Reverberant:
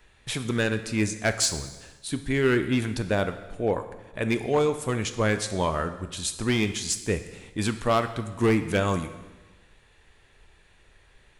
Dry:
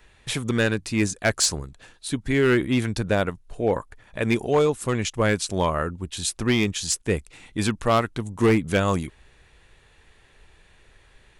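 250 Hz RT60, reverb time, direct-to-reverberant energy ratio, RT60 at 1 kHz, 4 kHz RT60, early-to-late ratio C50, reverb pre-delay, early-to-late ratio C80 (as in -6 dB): 1.2 s, 1.2 s, 9.0 dB, 1.2 s, 1.1 s, 11.0 dB, 7 ms, 13.0 dB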